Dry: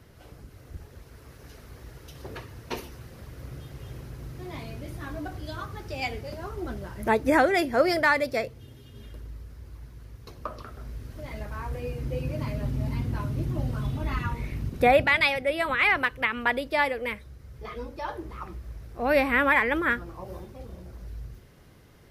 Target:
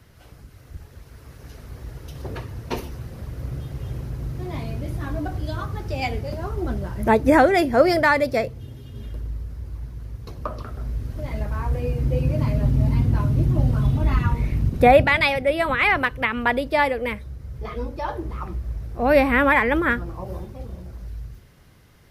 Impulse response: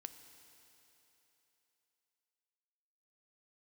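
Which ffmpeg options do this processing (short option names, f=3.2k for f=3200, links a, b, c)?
-filter_complex "[0:a]equalizer=f=400:t=o:w=1.8:g=-5,acrossover=split=850|2600[a][b][c];[a]dynaudnorm=f=140:g=21:m=8.5dB[d];[d][b][c]amix=inputs=3:normalize=0,volume=2.5dB"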